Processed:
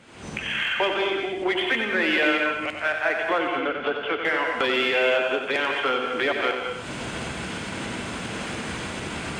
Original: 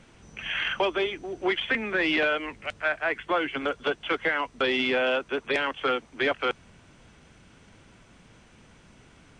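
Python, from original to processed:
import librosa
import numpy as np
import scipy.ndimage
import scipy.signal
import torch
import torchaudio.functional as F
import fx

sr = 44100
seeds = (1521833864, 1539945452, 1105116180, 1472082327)

p1 = fx.recorder_agc(x, sr, target_db=-25.0, rise_db_per_s=57.0, max_gain_db=30)
p2 = scipy.signal.sosfilt(scipy.signal.butter(2, 51.0, 'highpass', fs=sr, output='sos'), p1)
p3 = fx.low_shelf(p2, sr, hz=130.0, db=-10.0)
p4 = fx.notch(p3, sr, hz=5800.0, q=7.3)
p5 = 10.0 ** (-29.5 / 20.0) * np.tanh(p4 / 10.0 ** (-29.5 / 20.0))
p6 = p4 + (p5 * librosa.db_to_amplitude(-8.0))
p7 = fx.quant_float(p6, sr, bits=8)
p8 = fx.air_absorb(p7, sr, metres=190.0, at=(3.38, 4.25))
p9 = p8 + fx.echo_single(p8, sr, ms=92, db=-7.0, dry=0)
y = fx.rev_gated(p9, sr, seeds[0], gate_ms=240, shape='rising', drr_db=3.5)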